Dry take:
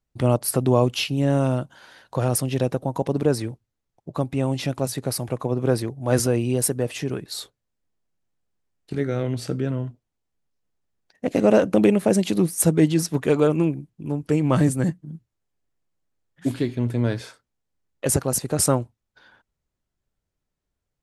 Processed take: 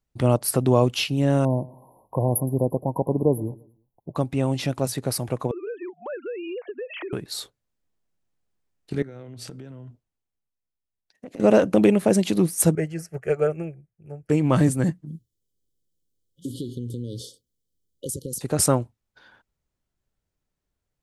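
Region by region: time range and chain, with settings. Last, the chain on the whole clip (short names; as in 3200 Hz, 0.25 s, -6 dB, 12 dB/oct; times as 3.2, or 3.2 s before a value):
1.45–4.16 brick-wall FIR band-stop 1100–10000 Hz + high shelf 11000 Hz +4.5 dB + feedback echo 0.115 s, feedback 38%, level -21 dB
5.51–7.13 sine-wave speech + HPF 380 Hz 24 dB/oct + compressor, threshold -30 dBFS
9.02–11.4 compressor 16:1, threshold -35 dBFS + three-band expander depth 40%
12.75–14.3 high shelf 7400 Hz -7.5 dB + fixed phaser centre 1000 Hz, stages 6 + upward expander, over -35 dBFS
15.07–18.41 high shelf 8000 Hz +8 dB + compressor 12:1, threshold -26 dBFS + brick-wall FIR band-stop 560–2900 Hz
whole clip: dry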